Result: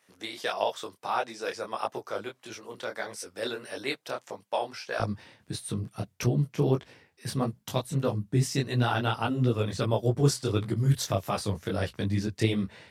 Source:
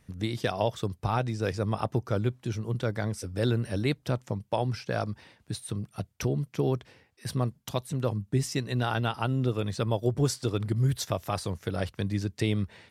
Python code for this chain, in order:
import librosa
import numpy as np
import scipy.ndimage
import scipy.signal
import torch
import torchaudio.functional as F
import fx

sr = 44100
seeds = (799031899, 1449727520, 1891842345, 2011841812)

y = fx.highpass(x, sr, hz=fx.steps((0.0, 560.0), (5.0, 88.0)), slope=12)
y = fx.detune_double(y, sr, cents=55)
y = y * librosa.db_to_amplitude(5.5)